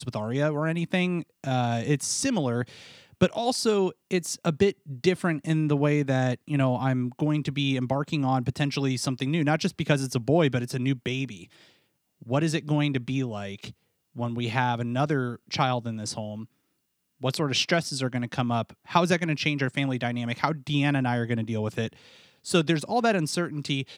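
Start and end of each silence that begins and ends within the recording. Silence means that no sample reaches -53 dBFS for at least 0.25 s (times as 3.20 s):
11.76–12.21 s
13.73–14.15 s
16.46–17.20 s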